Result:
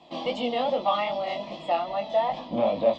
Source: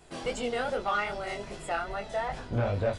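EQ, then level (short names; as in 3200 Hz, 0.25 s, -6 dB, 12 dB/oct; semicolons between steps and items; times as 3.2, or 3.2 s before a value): speaker cabinet 150–4300 Hz, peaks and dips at 360 Hz +6 dB, 610 Hz +3 dB, 3300 Hz +6 dB; bell 1100 Hz +6 dB 0.47 oct; fixed phaser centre 400 Hz, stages 6; +6.0 dB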